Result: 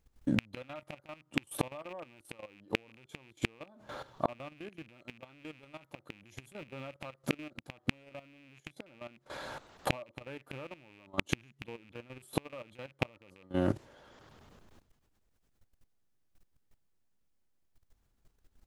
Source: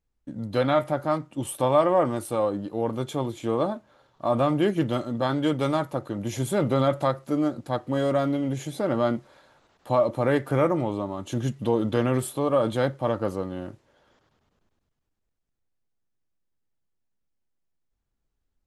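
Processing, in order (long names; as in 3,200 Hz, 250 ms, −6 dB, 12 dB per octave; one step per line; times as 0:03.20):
loose part that buzzes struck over −31 dBFS, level −16 dBFS
gate with flip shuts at −17 dBFS, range −38 dB
output level in coarse steps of 15 dB
level +17 dB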